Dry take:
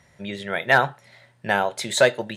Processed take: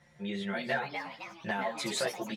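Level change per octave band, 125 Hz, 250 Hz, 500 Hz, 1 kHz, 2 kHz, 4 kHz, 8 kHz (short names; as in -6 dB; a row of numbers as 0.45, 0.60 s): -10.0, -4.0, -13.5, -12.5, -13.5, -9.0, -9.0 dB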